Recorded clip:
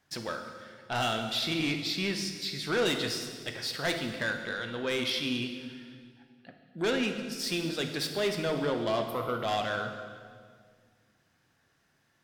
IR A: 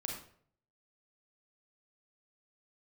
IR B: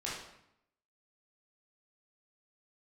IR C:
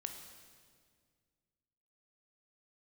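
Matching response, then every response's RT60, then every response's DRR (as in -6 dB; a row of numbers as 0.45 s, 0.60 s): C; 0.60 s, 0.75 s, 1.9 s; -0.5 dB, -7.0 dB, 5.0 dB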